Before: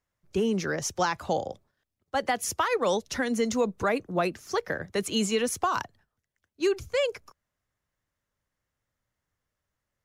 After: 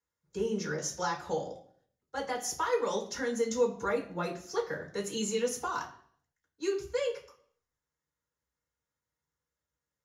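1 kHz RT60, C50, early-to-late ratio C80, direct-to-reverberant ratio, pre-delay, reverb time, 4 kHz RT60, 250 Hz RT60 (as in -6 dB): 0.55 s, 11.0 dB, 14.5 dB, -6.0 dB, 3 ms, 0.55 s, 0.50 s, 0.65 s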